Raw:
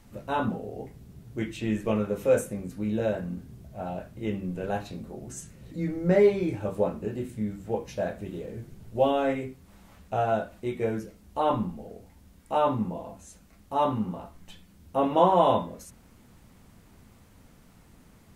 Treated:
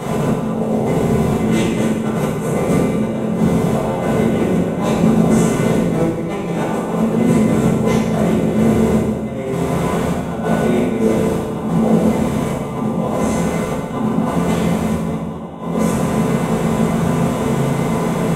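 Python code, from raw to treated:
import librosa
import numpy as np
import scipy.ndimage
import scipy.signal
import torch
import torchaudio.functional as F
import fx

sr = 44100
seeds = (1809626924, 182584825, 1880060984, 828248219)

y = fx.bin_compress(x, sr, power=0.4)
y = fx.low_shelf(y, sr, hz=160.0, db=-5.5, at=(6.38, 7.03))
y = fx.room_early_taps(y, sr, ms=(23, 36), db=(-7.5, -7.5))
y = fx.over_compress(y, sr, threshold_db=-24.0, ratio=-0.5)
y = fx.peak_eq(y, sr, hz=220.0, db=4.0, octaves=1.9)
y = fx.rev_fdn(y, sr, rt60_s=1.4, lf_ratio=1.55, hf_ratio=0.9, size_ms=40.0, drr_db=-8.0)
y = F.gain(torch.from_numpy(y), -4.0).numpy()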